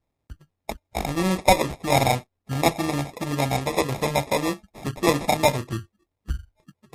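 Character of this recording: aliases and images of a low sample rate 1.5 kHz, jitter 0%; MP3

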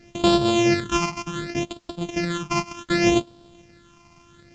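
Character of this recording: a buzz of ramps at a fixed pitch in blocks of 128 samples; phasing stages 8, 0.67 Hz, lowest notch 490–2000 Hz; a quantiser's noise floor 12-bit, dither triangular; µ-law

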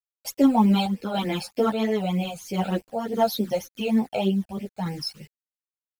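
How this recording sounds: a quantiser's noise floor 8-bit, dither none; phasing stages 12, 3.3 Hz, lowest notch 320–1300 Hz; random-step tremolo; a shimmering, thickened sound

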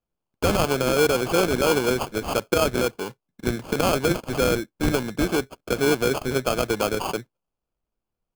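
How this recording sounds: aliases and images of a low sample rate 1.9 kHz, jitter 0%

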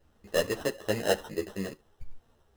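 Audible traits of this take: aliases and images of a low sample rate 2.3 kHz, jitter 0%; a shimmering, thickened sound

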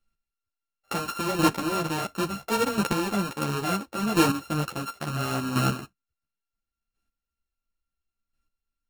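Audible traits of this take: a buzz of ramps at a fixed pitch in blocks of 32 samples; chopped level 0.72 Hz, depth 65%, duty 10%; a shimmering, thickened sound

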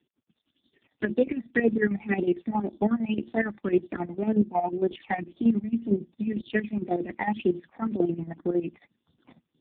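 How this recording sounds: chopped level 11 Hz, depth 65%, duty 55%; phasing stages 8, 1.9 Hz, lowest notch 380–2100 Hz; AMR-NB

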